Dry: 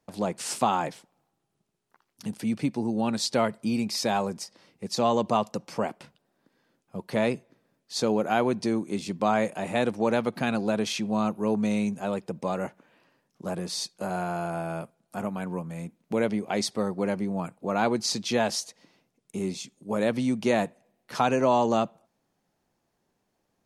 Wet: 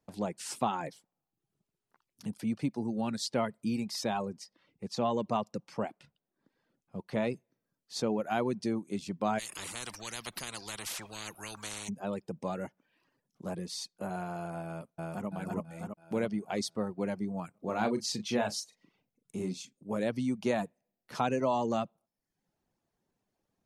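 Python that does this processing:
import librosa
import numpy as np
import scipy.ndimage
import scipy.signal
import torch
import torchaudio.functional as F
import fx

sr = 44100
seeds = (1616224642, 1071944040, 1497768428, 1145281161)

y = fx.high_shelf(x, sr, hz=9000.0, db=-12.0, at=(4.26, 7.33))
y = fx.spectral_comp(y, sr, ratio=10.0, at=(9.38, 11.88), fade=0.02)
y = fx.echo_throw(y, sr, start_s=14.65, length_s=0.62, ms=330, feedback_pct=60, wet_db=0.0)
y = fx.doubler(y, sr, ms=38.0, db=-6.5, at=(17.5, 19.77))
y = fx.dereverb_blind(y, sr, rt60_s=0.6)
y = fx.low_shelf(y, sr, hz=270.0, db=4.5)
y = y * librosa.db_to_amplitude(-7.0)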